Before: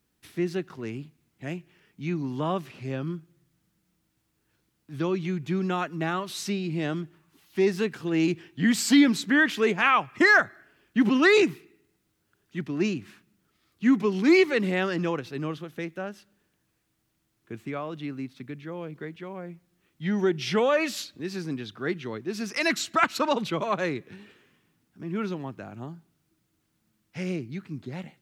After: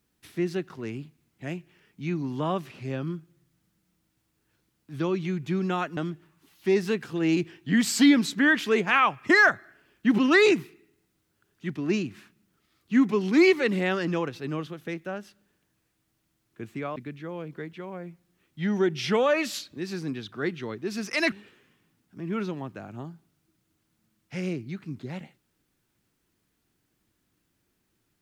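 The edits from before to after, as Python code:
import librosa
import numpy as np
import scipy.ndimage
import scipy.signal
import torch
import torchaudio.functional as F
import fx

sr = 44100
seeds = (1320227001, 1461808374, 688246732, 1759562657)

y = fx.edit(x, sr, fx.cut(start_s=5.97, length_s=0.91),
    fx.cut(start_s=17.87, length_s=0.52),
    fx.cut(start_s=22.75, length_s=1.4), tone=tone)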